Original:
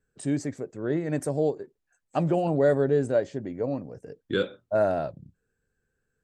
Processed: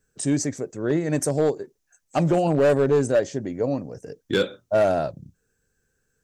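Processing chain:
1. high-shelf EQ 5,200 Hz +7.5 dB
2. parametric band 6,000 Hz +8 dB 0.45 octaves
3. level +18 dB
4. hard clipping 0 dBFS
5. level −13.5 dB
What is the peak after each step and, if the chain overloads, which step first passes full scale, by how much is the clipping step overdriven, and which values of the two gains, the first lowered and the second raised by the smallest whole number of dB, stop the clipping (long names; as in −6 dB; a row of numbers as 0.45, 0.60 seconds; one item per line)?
−11.5, −11.5, +6.5, 0.0, −13.5 dBFS
step 3, 6.5 dB
step 3 +11 dB, step 5 −6.5 dB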